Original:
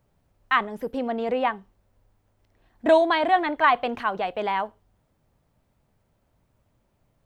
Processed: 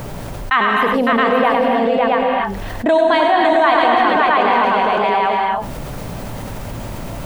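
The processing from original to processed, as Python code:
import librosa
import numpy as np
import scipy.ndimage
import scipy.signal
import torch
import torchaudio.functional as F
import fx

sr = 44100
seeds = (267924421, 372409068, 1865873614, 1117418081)

y = fx.peak_eq(x, sr, hz=72.0, db=-6.5, octaves=0.75)
y = fx.echo_multitap(y, sr, ms=(95, 557, 668), db=(-7.0, -4.5, -4.0))
y = fx.rev_gated(y, sr, seeds[0], gate_ms=300, shape='rising', drr_db=4.0)
y = fx.env_flatten(y, sr, amount_pct=70)
y = F.gain(torch.from_numpy(y), 1.5).numpy()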